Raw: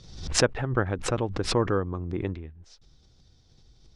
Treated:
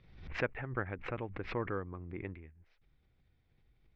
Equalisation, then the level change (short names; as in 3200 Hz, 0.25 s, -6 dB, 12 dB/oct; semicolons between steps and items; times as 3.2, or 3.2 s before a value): ladder low-pass 2500 Hz, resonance 60%; -2.0 dB